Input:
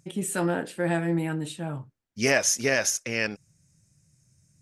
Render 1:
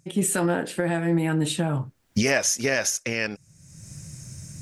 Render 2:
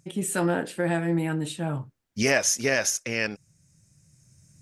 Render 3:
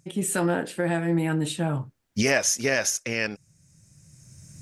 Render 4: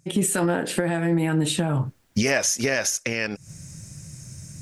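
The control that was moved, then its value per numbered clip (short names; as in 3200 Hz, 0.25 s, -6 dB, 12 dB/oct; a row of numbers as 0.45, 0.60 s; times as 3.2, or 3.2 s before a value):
recorder AGC, rising by: 35, 5.3, 13, 90 dB/s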